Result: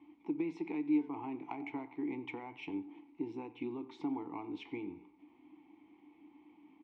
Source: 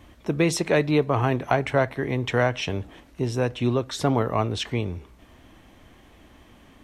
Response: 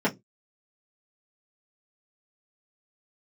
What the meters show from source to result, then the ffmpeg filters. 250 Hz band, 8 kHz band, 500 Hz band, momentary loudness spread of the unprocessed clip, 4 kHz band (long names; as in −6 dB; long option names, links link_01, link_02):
−9.5 dB, below −35 dB, −21.5 dB, 10 LU, −25.0 dB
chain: -filter_complex "[0:a]asplit=2[link_01][link_02];[1:a]atrim=start_sample=2205,asetrate=48510,aresample=44100[link_03];[link_02][link_03]afir=irnorm=-1:irlink=0,volume=-24.5dB[link_04];[link_01][link_04]amix=inputs=2:normalize=0,flanger=delay=9.2:depth=7.6:regen=-81:speed=0.34:shape=triangular,acompressor=threshold=-28dB:ratio=6,asplit=3[link_05][link_06][link_07];[link_05]bandpass=frequency=300:width_type=q:width=8,volume=0dB[link_08];[link_06]bandpass=frequency=870:width_type=q:width=8,volume=-6dB[link_09];[link_07]bandpass=frequency=2240:width_type=q:width=8,volume=-9dB[link_10];[link_08][link_09][link_10]amix=inputs=3:normalize=0,asplit=2[link_11][link_12];[link_12]adelay=90,highpass=300,lowpass=3400,asoftclip=type=hard:threshold=-37dB,volume=-19dB[link_13];[link_11][link_13]amix=inputs=2:normalize=0,adynamicsmooth=sensitivity=6.5:basefreq=5900,highpass=frequency=140:poles=1,volume=4.5dB"